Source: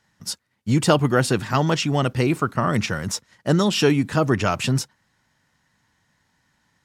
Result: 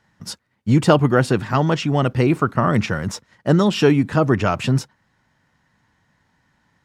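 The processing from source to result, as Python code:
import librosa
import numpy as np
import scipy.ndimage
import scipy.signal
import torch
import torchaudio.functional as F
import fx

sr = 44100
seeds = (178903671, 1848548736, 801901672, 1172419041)

y = fx.rider(x, sr, range_db=4, speed_s=2.0)
y = fx.high_shelf(y, sr, hz=3500.0, db=-11.0)
y = y * 10.0 ** (3.0 / 20.0)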